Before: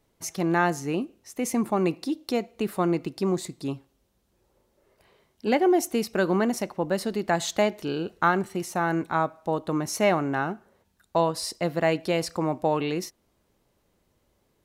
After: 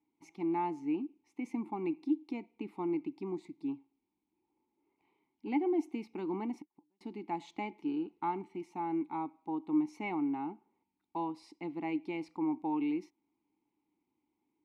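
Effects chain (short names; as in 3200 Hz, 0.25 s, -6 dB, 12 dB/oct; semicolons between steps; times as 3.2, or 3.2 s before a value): 6.59–7.01 flipped gate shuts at -26 dBFS, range -40 dB; vowel filter u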